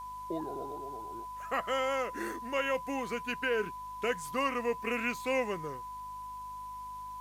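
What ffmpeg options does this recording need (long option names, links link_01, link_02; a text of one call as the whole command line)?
ffmpeg -i in.wav -af "adeclick=threshold=4,bandreject=frequency=51.1:width_type=h:width=4,bandreject=frequency=102.2:width_type=h:width=4,bandreject=frequency=153.3:width_type=h:width=4,bandreject=frequency=204.4:width_type=h:width=4,bandreject=frequency=255.5:width_type=h:width=4,bandreject=frequency=1000:width=30,agate=range=-21dB:threshold=-35dB" out.wav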